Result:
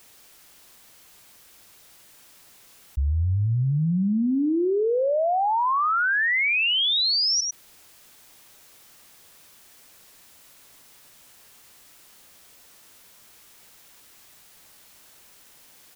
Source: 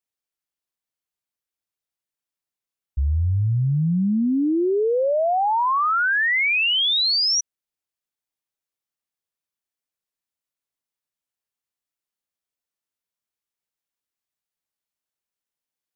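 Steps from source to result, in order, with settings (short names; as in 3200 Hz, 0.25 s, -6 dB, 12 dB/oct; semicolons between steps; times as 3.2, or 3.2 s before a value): on a send: echo 0.1 s -17.5 dB; on the sum: fast leveller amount 70%; gain -3 dB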